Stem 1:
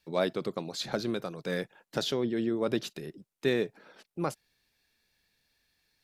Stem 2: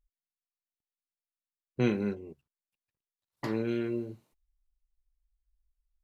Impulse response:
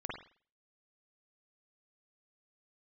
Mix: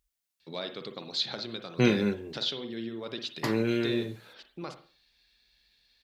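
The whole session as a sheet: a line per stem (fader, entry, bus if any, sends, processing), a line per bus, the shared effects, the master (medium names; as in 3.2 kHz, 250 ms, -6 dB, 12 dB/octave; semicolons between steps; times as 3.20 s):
-6.0 dB, 0.40 s, send -4 dB, compression 2.5:1, threshold -36 dBFS, peak gain reduction 10 dB; resonant low-pass 4 kHz, resonance Q 2.5
+3.0 dB, 0.00 s, send -19 dB, none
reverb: on, pre-delay 44 ms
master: high-pass 50 Hz; treble shelf 2.1 kHz +8 dB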